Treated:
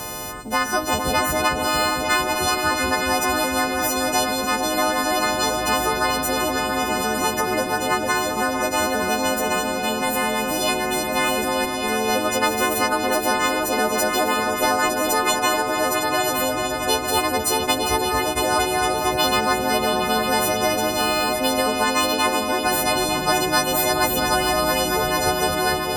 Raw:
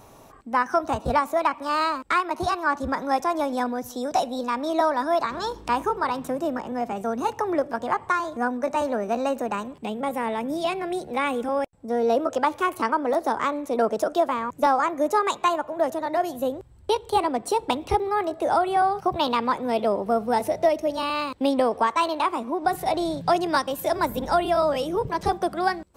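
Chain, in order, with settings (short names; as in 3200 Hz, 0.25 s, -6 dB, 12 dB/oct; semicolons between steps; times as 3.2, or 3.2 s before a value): frequency quantiser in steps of 3 st; repeats that get brighter 0.227 s, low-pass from 200 Hz, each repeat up 2 oct, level -3 dB; spectral compressor 2:1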